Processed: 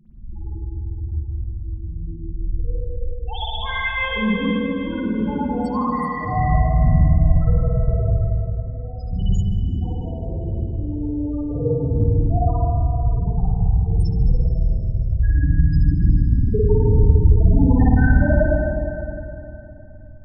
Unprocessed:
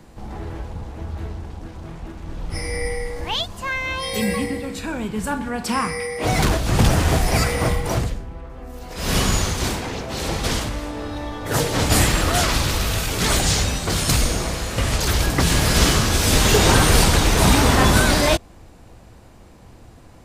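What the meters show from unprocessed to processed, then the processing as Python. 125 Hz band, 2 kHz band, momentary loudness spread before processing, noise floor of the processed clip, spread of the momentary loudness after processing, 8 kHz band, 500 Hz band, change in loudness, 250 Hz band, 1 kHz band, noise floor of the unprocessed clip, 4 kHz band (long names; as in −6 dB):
+4.0 dB, −6.0 dB, 18 LU, −35 dBFS, 15 LU, below −35 dB, −2.0 dB, −1.0 dB, +1.0 dB, −4.5 dB, −45 dBFS, −15.0 dB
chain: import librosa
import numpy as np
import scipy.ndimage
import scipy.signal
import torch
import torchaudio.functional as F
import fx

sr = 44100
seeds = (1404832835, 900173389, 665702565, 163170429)

y = fx.spec_topn(x, sr, count=4)
y = fx.rev_spring(y, sr, rt60_s=3.1, pass_ms=(51, 55), chirp_ms=25, drr_db=-9.5)
y = F.gain(torch.from_numpy(y), -3.5).numpy()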